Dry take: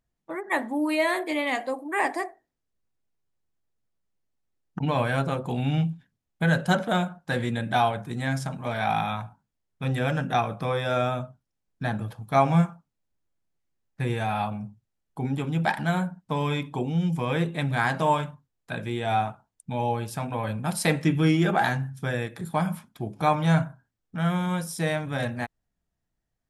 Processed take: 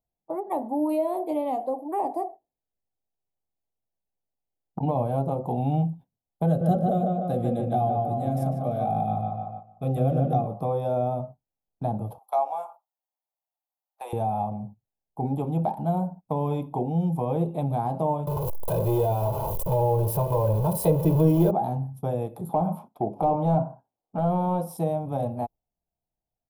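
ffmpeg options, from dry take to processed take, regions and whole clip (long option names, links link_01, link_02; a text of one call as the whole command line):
ffmpeg -i in.wav -filter_complex "[0:a]asettb=1/sr,asplit=3[link_01][link_02][link_03];[link_01]atrim=end=6.464[link_04];[link_02]atrim=start=6.46:end=10.47,asetpts=PTS-STARTPTS,afade=type=in:duration=0.004:curve=qsin,afade=type=out:start_time=4.006:duration=0.004:curve=qsin,asuperstop=centerf=930:order=4:qfactor=3,asplit=2[link_05][link_06];[link_06]adelay=149,lowpass=frequency=2500:poles=1,volume=-3dB,asplit=2[link_07][link_08];[link_08]adelay=149,lowpass=frequency=2500:poles=1,volume=0.49,asplit=2[link_09][link_10];[link_10]adelay=149,lowpass=frequency=2500:poles=1,volume=0.49,asplit=2[link_11][link_12];[link_12]adelay=149,lowpass=frequency=2500:poles=1,volume=0.49,asplit=2[link_13][link_14];[link_14]adelay=149,lowpass=frequency=2500:poles=1,volume=0.49,asplit=2[link_15][link_16];[link_16]adelay=149,lowpass=frequency=2500:poles=1,volume=0.49[link_17];[link_05][link_07][link_09][link_11][link_13][link_15][link_17]amix=inputs=7:normalize=0,atrim=end_sample=176841[link_18];[link_03]atrim=start=10.466[link_19];[link_04][link_18]acrossfade=duration=0.004:curve1=hsin:curve2=qsin[link_20];[link_20][link_19]acrossfade=duration=0.004:curve1=qsin:curve2=hsin,asettb=1/sr,asplit=3[link_21][link_22][link_23];[link_21]atrim=end=12.184[link_24];[link_22]atrim=start=12.18:end=14.13,asetpts=PTS-STARTPTS,afade=type=in:duration=0.004:curve=qsin,afade=type=out:start_time=1.946:duration=0.004:curve=qsin,highpass=frequency=760:width=0.5412,highpass=frequency=760:width=1.3066,acontrast=33[link_25];[link_23]atrim=start=14.126[link_26];[link_24][link_25]acrossfade=duration=0.004:curve1=hsin:curve2=qsin[link_27];[link_27][link_26]acrossfade=duration=0.004:curve1=qsin:curve2=hsin,asettb=1/sr,asplit=3[link_28][link_29][link_30];[link_28]atrim=end=18.274[link_31];[link_29]atrim=start=18.27:end=21.51,asetpts=PTS-STARTPTS,afade=type=in:duration=0.004:curve=qsin,afade=type=out:start_time=3.236:duration=0.004:curve=qsin,aeval=exprs='val(0)+0.5*0.0596*sgn(val(0))':channel_layout=same,aecho=1:1:2:0.98,atrim=end_sample=142884[link_32];[link_30]atrim=start=21.506[link_33];[link_31][link_32]acrossfade=duration=0.004:curve1=hsin:curve2=qsin[link_34];[link_34][link_33]acrossfade=duration=0.004:curve1=qsin:curve2=hsin,asettb=1/sr,asplit=3[link_35][link_36][link_37];[link_35]atrim=end=22.494[link_38];[link_36]atrim=start=22.49:end=24.77,asetpts=PTS-STARTPTS,afade=type=in:duration=0.004:curve=qsin,afade=type=out:start_time=2.276:duration=0.004:curve=qsin,lowshelf=frequency=60:gain=-9,asplit=2[link_39][link_40];[link_40]highpass=frequency=720:poles=1,volume=19dB,asoftclip=type=tanh:threshold=-9.5dB[link_41];[link_39][link_41]amix=inputs=2:normalize=0,lowpass=frequency=1700:poles=1,volume=-6dB[link_42];[link_37]atrim=start=24.766[link_43];[link_38][link_42]acrossfade=duration=0.004:curve1=hsin:curve2=qsin[link_44];[link_44][link_43]acrossfade=duration=0.004:curve1=qsin:curve2=hsin,agate=range=-9dB:threshold=-42dB:ratio=16:detection=peak,firequalizer=gain_entry='entry(250,0);entry(770,10);entry(1700,-27);entry(2600,-15);entry(7200,-15);entry(12000,5)':delay=0.05:min_phase=1,acrossover=split=380[link_45][link_46];[link_46]acompressor=threshold=-29dB:ratio=3[link_47];[link_45][link_47]amix=inputs=2:normalize=0" out.wav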